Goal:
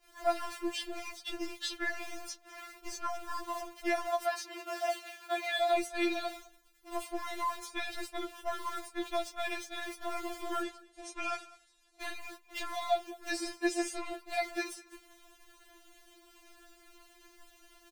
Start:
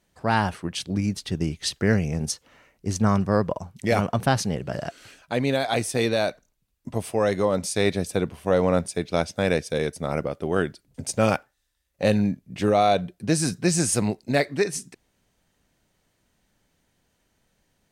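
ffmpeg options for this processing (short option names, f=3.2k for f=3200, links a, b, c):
-filter_complex "[0:a]aeval=exprs='val(0)+0.5*0.0282*sgn(val(0))':c=same,asettb=1/sr,asplit=3[a][b][c];[a]atrim=end=10.624[d];[b]atrim=start=10.62:end=12.02,asetpts=PTS-STARTPTS,afade=t=in:d=0.004:c=qsin,afade=t=out:st=1.396:d=0.004:c=qsin,lowpass=f=9.8k:w=0.5412,lowpass=f=9.8k:w=1.3066[e];[c]atrim=start=12.016[f];[d][e]acrossfade=d=0.004:c1=hsin:c2=qsin[g];[g][f]acrossfade=d=0.004:c1=qsin:c2=hsin,acrossover=split=520|3600[h][i][j];[h]acompressor=threshold=-30dB:ratio=4[k];[i]acompressor=threshold=-28dB:ratio=4[l];[j]acompressor=threshold=-43dB:ratio=4[m];[k][l][m]amix=inputs=3:normalize=0,acrossover=split=600|910[n][o][p];[n]asoftclip=type=tanh:threshold=-29dB[q];[q][o][p]amix=inputs=3:normalize=0,agate=range=-32dB:threshold=-35dB:ratio=16:detection=peak,asettb=1/sr,asplit=3[r][s][t];[r]atrim=end=4.124[u];[s]atrim=start=4.12:end=5.61,asetpts=PTS-STARTPTS,afade=t=in:d=0.004:c=qsin,afade=t=out:st=1.486:d=0.004:c=qsin,highpass=310[v];[t]atrim=start=5.606[w];[u][v]acrossfade=d=0.004:c1=hsin:c2=qsin[x];[x][w]acrossfade=d=0.004:c1=qsin:c2=hsin,aecho=1:1:203:0.0841,afftfilt=real='re*4*eq(mod(b,16),0)':imag='im*4*eq(mod(b,16),0)':win_size=2048:overlap=0.75,volume=-1.5dB"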